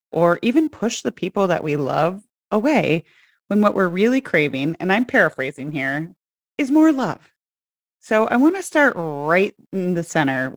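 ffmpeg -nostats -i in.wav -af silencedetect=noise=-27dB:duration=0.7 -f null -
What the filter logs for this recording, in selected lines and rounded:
silence_start: 7.14
silence_end: 8.11 | silence_duration: 0.97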